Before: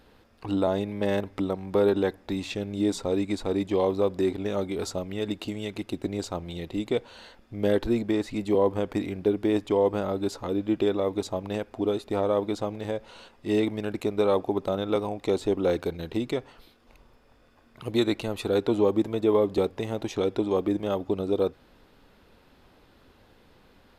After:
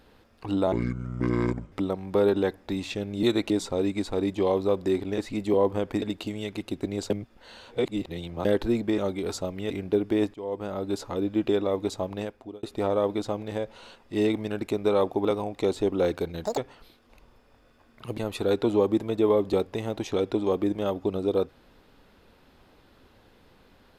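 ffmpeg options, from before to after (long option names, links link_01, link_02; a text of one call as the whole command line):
ffmpeg -i in.wav -filter_complex "[0:a]asplit=17[link_01][link_02][link_03][link_04][link_05][link_06][link_07][link_08][link_09][link_10][link_11][link_12][link_13][link_14][link_15][link_16][link_17];[link_01]atrim=end=0.724[link_18];[link_02]atrim=start=0.72:end=1.32,asetpts=PTS-STARTPTS,asetrate=26460,aresample=44100[link_19];[link_03]atrim=start=1.316:end=2.832[link_20];[link_04]atrim=start=17.948:end=18.222[link_21];[link_05]atrim=start=2.828:end=4.512[link_22];[link_06]atrim=start=8.188:end=9.032[link_23];[link_07]atrim=start=5.228:end=6.312[link_24];[link_08]atrim=start=6.308:end=7.662,asetpts=PTS-STARTPTS,areverse[link_25];[link_09]atrim=start=7.658:end=8.192[link_26];[link_10]atrim=start=4.508:end=5.232[link_27];[link_11]atrim=start=9.028:end=9.67,asetpts=PTS-STARTPTS,afade=type=out:start_time=0.638:duration=0.004:curve=hsin:silence=0.11885[link_28];[link_12]atrim=start=9.67:end=11.96,asetpts=PTS-STARTPTS,afade=type=in:duration=0.66:silence=0.11885,afade=type=out:start_time=1.76:duration=0.53[link_29];[link_13]atrim=start=11.96:end=14.582,asetpts=PTS-STARTPTS,afade=type=in:duration=0.004:curve=hsin[link_30];[link_14]atrim=start=14.898:end=16.094[link_31];[link_15]atrim=start=16.09:end=16.35,asetpts=PTS-STARTPTS,asetrate=84672,aresample=44100[link_32];[link_16]atrim=start=16.346:end=17.952[link_33];[link_17]atrim=start=18.218[link_34];[link_18][link_19]acrossfade=duration=0.004:curve1=hsin:curve2=hsin[link_35];[link_35][link_20]acrossfade=duration=0.004:curve1=hsin:curve2=hsin[link_36];[link_36][link_21]acrossfade=duration=0.004:curve1=hsin:curve2=hsin[link_37];[link_37][link_22]acrossfade=duration=0.004:curve1=hsin:curve2=hsin[link_38];[link_38][link_23]acrossfade=duration=0.004:curve1=hsin:curve2=hsin[link_39];[link_39][link_24]acrossfade=duration=0.004:curve1=hsin:curve2=hsin[link_40];[link_40][link_25]acrossfade=duration=0.004:curve1=hsin:curve2=hsin[link_41];[link_41][link_26]acrossfade=duration=0.004:curve1=hsin:curve2=hsin[link_42];[link_42][link_27]acrossfade=duration=0.004:curve1=hsin:curve2=hsin[link_43];[link_28][link_29][link_30]concat=n=3:v=0:a=1[link_44];[link_43][link_44]acrossfade=duration=0.004:curve1=hsin:curve2=hsin[link_45];[link_45][link_31]acrossfade=duration=0.004:curve1=hsin:curve2=hsin[link_46];[link_46][link_32]acrossfade=duration=0.004:curve1=hsin:curve2=hsin[link_47];[link_47][link_33]acrossfade=duration=0.004:curve1=hsin:curve2=hsin[link_48];[link_48][link_34]acrossfade=duration=0.004:curve1=hsin:curve2=hsin" out.wav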